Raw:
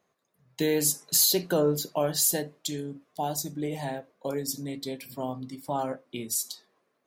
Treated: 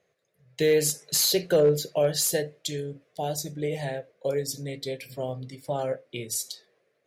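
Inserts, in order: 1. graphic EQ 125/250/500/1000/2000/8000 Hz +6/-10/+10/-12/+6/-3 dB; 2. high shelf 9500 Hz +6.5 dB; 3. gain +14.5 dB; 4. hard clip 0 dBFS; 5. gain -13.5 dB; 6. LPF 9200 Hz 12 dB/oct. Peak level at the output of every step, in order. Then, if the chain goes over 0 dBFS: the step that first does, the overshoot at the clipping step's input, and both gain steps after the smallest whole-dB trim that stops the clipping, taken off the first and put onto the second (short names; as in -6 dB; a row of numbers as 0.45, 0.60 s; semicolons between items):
-11.5, -8.5, +6.0, 0.0, -13.5, -13.0 dBFS; step 3, 6.0 dB; step 3 +8.5 dB, step 5 -7.5 dB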